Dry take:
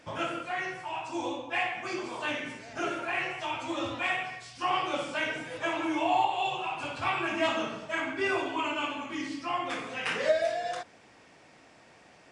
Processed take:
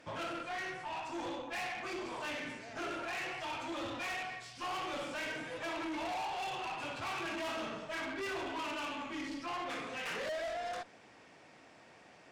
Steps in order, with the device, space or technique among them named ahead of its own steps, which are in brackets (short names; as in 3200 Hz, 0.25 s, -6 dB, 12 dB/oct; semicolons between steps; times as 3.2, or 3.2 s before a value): tube preamp driven hard (tube stage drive 36 dB, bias 0.45; low shelf 92 Hz -5.5 dB; high shelf 6500 Hz -5 dB)